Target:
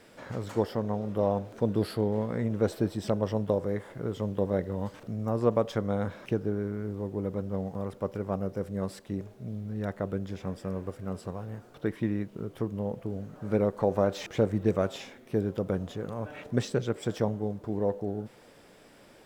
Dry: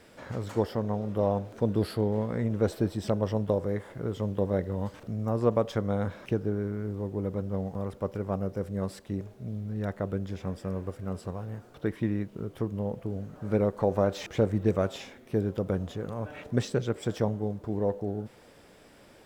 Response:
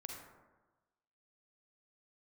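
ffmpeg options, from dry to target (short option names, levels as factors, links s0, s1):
-af "equalizer=f=64:t=o:w=0.79:g=-9"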